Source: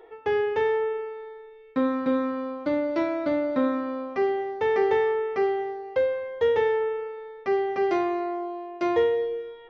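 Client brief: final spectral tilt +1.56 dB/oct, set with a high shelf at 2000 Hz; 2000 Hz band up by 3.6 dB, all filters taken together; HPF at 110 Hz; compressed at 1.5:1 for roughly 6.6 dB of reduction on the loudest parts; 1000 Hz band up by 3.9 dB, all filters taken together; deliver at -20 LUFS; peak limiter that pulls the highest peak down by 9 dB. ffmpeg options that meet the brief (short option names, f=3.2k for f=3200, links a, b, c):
-af "highpass=110,equalizer=f=1k:t=o:g=5.5,highshelf=f=2k:g=-8.5,equalizer=f=2k:t=o:g=7,acompressor=threshold=-36dB:ratio=1.5,volume=13.5dB,alimiter=limit=-12.5dB:level=0:latency=1"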